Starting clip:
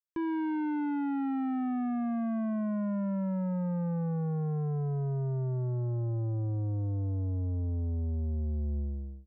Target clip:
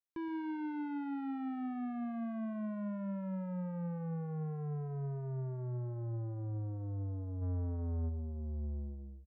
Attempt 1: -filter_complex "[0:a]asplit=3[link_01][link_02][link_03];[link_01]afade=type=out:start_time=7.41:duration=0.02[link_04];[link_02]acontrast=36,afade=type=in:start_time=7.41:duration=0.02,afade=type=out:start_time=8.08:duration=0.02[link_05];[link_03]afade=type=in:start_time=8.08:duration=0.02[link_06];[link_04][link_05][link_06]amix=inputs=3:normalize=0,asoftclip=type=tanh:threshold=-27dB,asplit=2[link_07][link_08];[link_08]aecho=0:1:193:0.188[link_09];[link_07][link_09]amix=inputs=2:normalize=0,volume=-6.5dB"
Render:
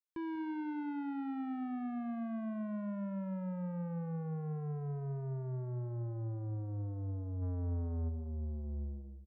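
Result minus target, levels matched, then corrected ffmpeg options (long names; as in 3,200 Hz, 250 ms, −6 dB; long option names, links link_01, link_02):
echo 72 ms late
-filter_complex "[0:a]asplit=3[link_01][link_02][link_03];[link_01]afade=type=out:start_time=7.41:duration=0.02[link_04];[link_02]acontrast=36,afade=type=in:start_time=7.41:duration=0.02,afade=type=out:start_time=8.08:duration=0.02[link_05];[link_03]afade=type=in:start_time=8.08:duration=0.02[link_06];[link_04][link_05][link_06]amix=inputs=3:normalize=0,asoftclip=type=tanh:threshold=-27dB,asplit=2[link_07][link_08];[link_08]aecho=0:1:121:0.188[link_09];[link_07][link_09]amix=inputs=2:normalize=0,volume=-6.5dB"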